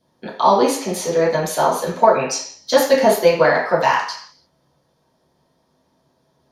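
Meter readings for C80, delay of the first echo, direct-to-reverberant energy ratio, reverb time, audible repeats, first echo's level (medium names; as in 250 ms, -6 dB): 8.5 dB, no echo, -11.0 dB, 0.55 s, no echo, no echo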